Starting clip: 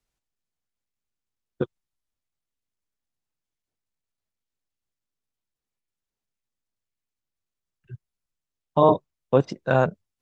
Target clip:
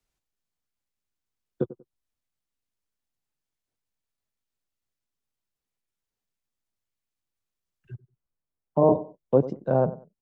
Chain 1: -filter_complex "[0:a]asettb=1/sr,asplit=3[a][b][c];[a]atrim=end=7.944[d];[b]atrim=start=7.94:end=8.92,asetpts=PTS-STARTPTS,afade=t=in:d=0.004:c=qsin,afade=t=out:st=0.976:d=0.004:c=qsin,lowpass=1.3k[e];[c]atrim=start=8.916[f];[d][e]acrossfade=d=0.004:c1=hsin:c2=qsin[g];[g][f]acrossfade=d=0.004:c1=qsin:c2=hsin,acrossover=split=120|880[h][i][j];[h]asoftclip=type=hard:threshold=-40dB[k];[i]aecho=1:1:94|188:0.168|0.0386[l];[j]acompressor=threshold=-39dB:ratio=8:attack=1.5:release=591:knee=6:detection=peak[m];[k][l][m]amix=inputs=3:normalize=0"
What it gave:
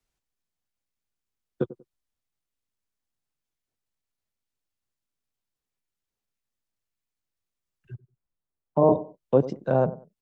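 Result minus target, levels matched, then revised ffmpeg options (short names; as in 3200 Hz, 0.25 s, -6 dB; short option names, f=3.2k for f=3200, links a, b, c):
compressor: peak gain reduction -10 dB
-filter_complex "[0:a]asettb=1/sr,asplit=3[a][b][c];[a]atrim=end=7.944[d];[b]atrim=start=7.94:end=8.92,asetpts=PTS-STARTPTS,afade=t=in:d=0.004:c=qsin,afade=t=out:st=0.976:d=0.004:c=qsin,lowpass=1.3k[e];[c]atrim=start=8.916[f];[d][e]acrossfade=d=0.004:c1=hsin:c2=qsin[g];[g][f]acrossfade=d=0.004:c1=qsin:c2=hsin,acrossover=split=120|880[h][i][j];[h]asoftclip=type=hard:threshold=-40dB[k];[i]aecho=1:1:94|188:0.168|0.0386[l];[j]acompressor=threshold=-50.5dB:ratio=8:attack=1.5:release=591:knee=6:detection=peak[m];[k][l][m]amix=inputs=3:normalize=0"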